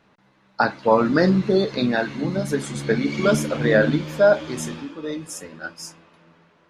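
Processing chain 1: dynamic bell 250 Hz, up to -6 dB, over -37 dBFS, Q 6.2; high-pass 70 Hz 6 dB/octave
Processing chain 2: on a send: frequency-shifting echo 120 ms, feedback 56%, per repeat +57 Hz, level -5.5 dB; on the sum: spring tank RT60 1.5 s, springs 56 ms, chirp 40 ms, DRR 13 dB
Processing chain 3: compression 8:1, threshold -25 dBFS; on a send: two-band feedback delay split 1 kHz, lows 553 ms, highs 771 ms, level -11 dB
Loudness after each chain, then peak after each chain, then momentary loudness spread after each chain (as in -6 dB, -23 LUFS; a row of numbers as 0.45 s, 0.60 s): -21.5 LUFS, -19.5 LUFS, -30.0 LUFS; -5.0 dBFS, -2.0 dBFS, -10.0 dBFS; 16 LU, 16 LU, 9 LU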